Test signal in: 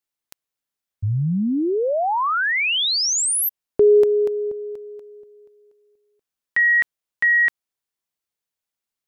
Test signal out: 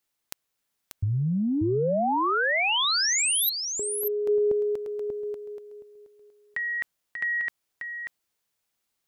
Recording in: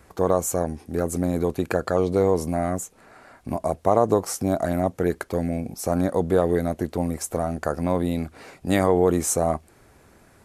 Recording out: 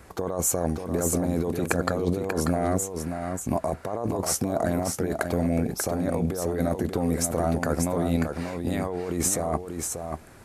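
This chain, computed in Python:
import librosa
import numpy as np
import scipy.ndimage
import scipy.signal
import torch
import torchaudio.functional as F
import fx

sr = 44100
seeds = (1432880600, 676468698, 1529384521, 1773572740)

p1 = fx.over_compress(x, sr, threshold_db=-26.0, ratio=-1.0)
y = p1 + fx.echo_single(p1, sr, ms=588, db=-6.0, dry=0)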